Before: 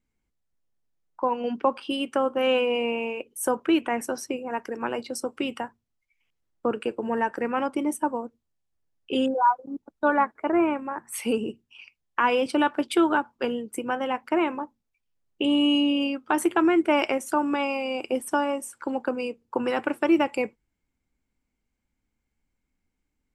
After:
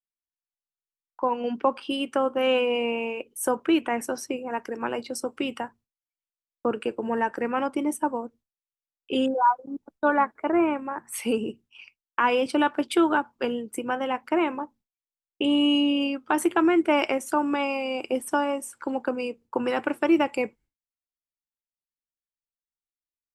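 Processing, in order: expander -49 dBFS

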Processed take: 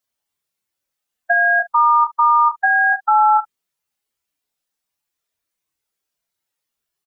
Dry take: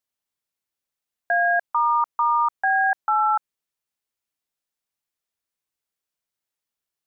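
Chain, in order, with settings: spectral contrast enhancement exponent 2; early reflections 28 ms -4 dB, 69 ms -17.5 dB; in parallel at +0.5 dB: level held to a coarse grid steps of 12 dB; on the sum: trim +2 dB

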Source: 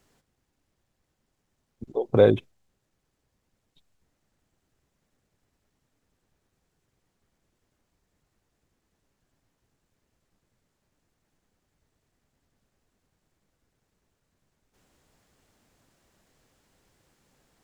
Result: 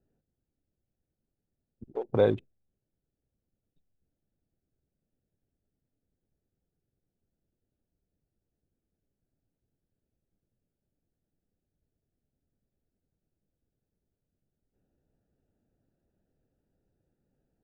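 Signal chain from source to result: local Wiener filter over 41 samples; 1.85–2.31 s: peaking EQ 910 Hz +5 dB 0.5 oct; trim -6.5 dB

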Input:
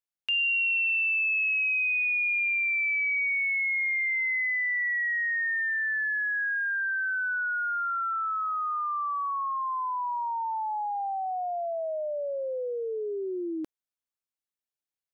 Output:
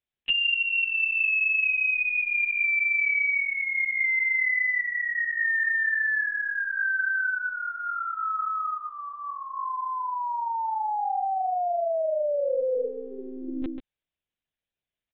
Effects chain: peaking EQ 1.1 kHz -9.5 dB 0.97 oct; compression 5:1, threshold -32 dBFS, peak gain reduction 6 dB; delay 142 ms -5.5 dB; monotone LPC vocoder at 8 kHz 260 Hz; trim +8 dB

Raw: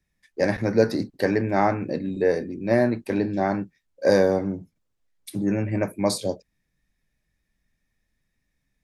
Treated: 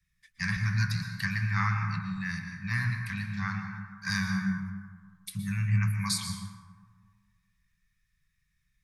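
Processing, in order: Chebyshev band-stop 180–1100 Hz, order 4; plate-style reverb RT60 1.6 s, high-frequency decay 0.4×, pre-delay 105 ms, DRR 5 dB

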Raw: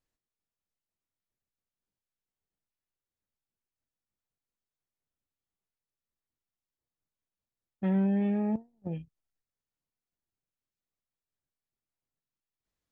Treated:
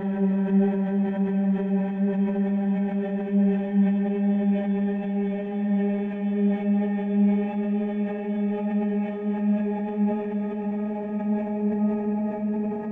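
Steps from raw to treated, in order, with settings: Paulstretch 27×, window 0.50 s, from 8.02 s; transient shaper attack -1 dB, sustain +6 dB; trim +2.5 dB

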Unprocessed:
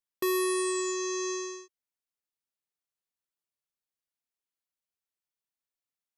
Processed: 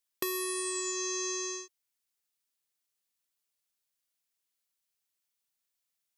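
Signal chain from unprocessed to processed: treble shelf 2.1 kHz +9.5 dB; compression 10:1, threshold -30 dBFS, peak gain reduction 10 dB

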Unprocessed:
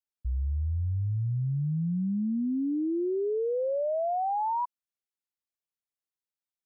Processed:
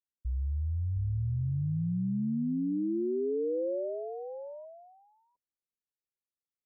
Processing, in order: steep low-pass 580 Hz 48 dB/octave; delay 707 ms -9 dB; trim -2.5 dB

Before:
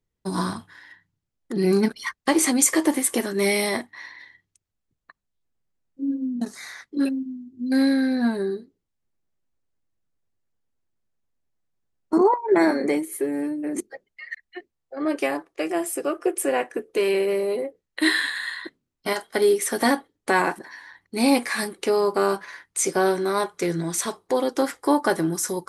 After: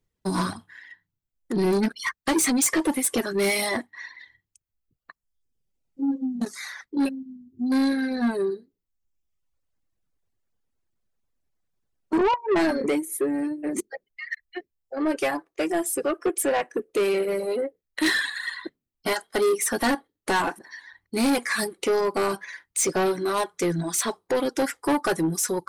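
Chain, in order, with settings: reverb removal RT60 1 s; saturation -21 dBFS, distortion -9 dB; trim +3.5 dB

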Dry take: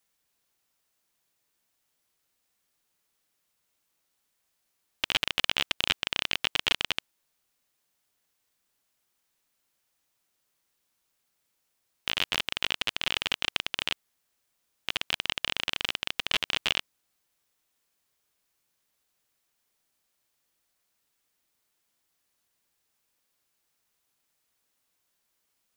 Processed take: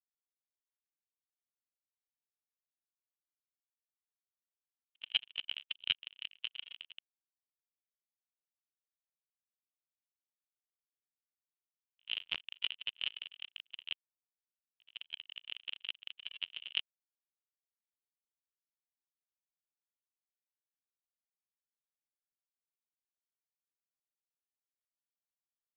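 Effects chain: pre-echo 84 ms -15.5 dB; peak limiter -12.5 dBFS, peak gain reduction 9.5 dB; tremolo 5.6 Hz, depth 78%; spectral contrast expander 2.5:1; trim -2 dB

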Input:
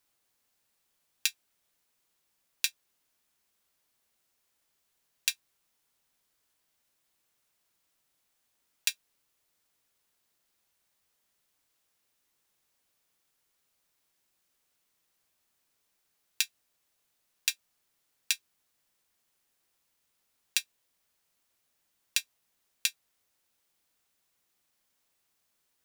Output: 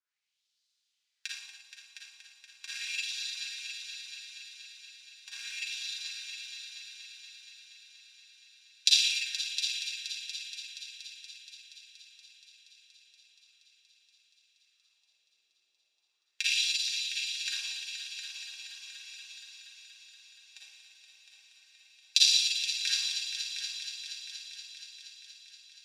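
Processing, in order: peaking EQ 5.8 kHz +14 dB 2.1 oct; Schroeder reverb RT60 2.6 s, DRR -9 dB; LFO band-pass sine 0.37 Hz 410–4000 Hz; on a send: multi-head delay 237 ms, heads all three, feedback 73%, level -10 dB; on the sum: upward expansion 1.5:1, over -41 dBFS; trim -2 dB

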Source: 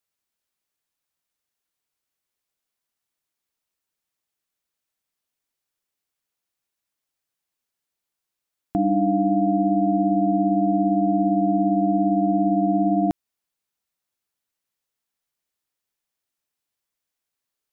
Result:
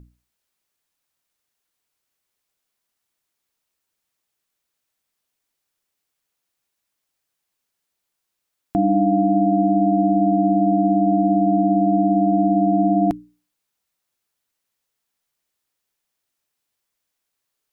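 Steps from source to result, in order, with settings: in parallel at -2 dB: peak limiter -18 dBFS, peak gain reduction 7 dB; on the sum: hum 60 Hz, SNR 20 dB; hum notches 60/120/180/240/300 Hz

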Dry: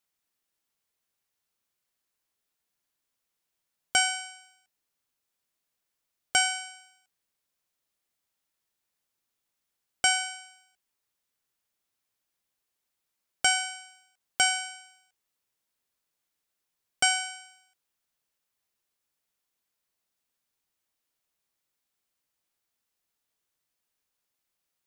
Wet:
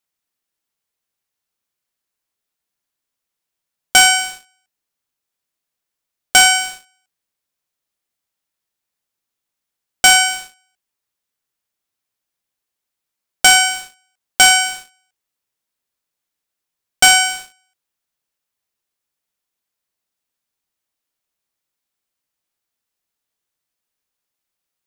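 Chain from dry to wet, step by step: waveshaping leveller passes 3; trim +7 dB

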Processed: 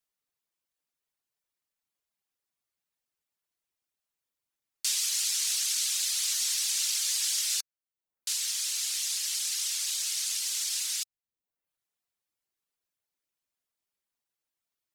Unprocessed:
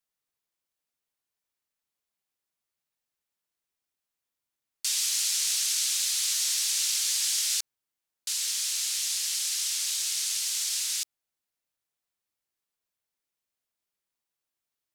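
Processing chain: reverb removal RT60 0.63 s

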